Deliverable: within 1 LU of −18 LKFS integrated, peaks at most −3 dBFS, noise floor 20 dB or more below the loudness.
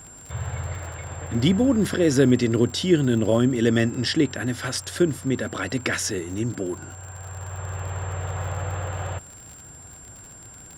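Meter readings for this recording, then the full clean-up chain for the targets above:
crackle rate 53 per second; interfering tone 7,400 Hz; level of the tone −43 dBFS; integrated loudness −24.0 LKFS; sample peak −6.5 dBFS; target loudness −18.0 LKFS
→ click removal
notch filter 7,400 Hz, Q 30
level +6 dB
brickwall limiter −3 dBFS

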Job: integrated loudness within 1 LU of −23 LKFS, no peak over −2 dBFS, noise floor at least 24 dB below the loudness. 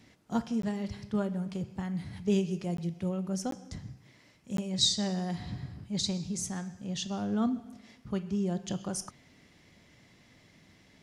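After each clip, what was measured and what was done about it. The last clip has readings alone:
number of dropouts 4; longest dropout 13 ms; integrated loudness −33.0 LKFS; sample peak −14.0 dBFS; target loudness −23.0 LKFS
→ repair the gap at 0:00.62/0:02.77/0:03.51/0:04.57, 13 ms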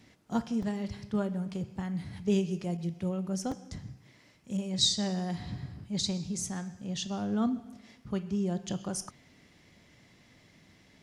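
number of dropouts 0; integrated loudness −33.0 LKFS; sample peak −14.0 dBFS; target loudness −23.0 LKFS
→ level +10 dB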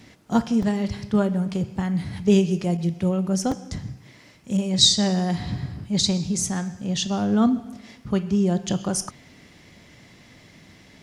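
integrated loudness −23.0 LKFS; sample peak −4.0 dBFS; background noise floor −51 dBFS

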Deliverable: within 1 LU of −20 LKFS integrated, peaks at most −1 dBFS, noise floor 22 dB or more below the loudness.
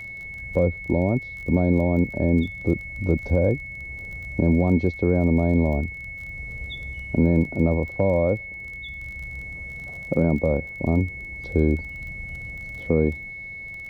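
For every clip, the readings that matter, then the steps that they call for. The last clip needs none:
crackle rate 25 per second; interfering tone 2,200 Hz; level of the tone −34 dBFS; integrated loudness −24.0 LKFS; sample peak −8.5 dBFS; target loudness −20.0 LKFS
→ click removal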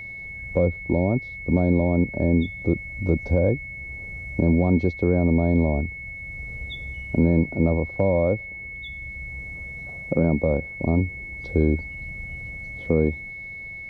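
crackle rate 0 per second; interfering tone 2,200 Hz; level of the tone −34 dBFS
→ notch filter 2,200 Hz, Q 30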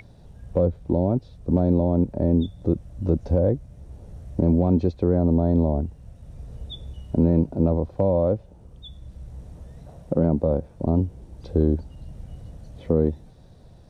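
interfering tone none found; integrated loudness −23.0 LKFS; sample peak −8.5 dBFS; target loudness −20.0 LKFS
→ level +3 dB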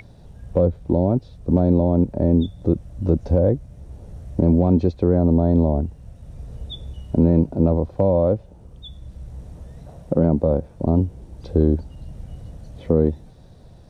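integrated loudness −20.0 LKFS; sample peak −5.5 dBFS; background noise floor −46 dBFS

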